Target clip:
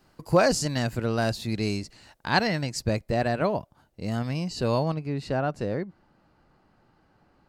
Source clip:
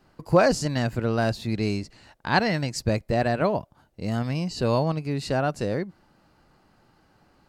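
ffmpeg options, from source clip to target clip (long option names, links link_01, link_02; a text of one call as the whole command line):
ffmpeg -i in.wav -af "asetnsamples=nb_out_samples=441:pad=0,asendcmd='2.47 highshelf g 2;4.94 highshelf g -10.5',highshelf=frequency=4200:gain=7.5,volume=-2dB" out.wav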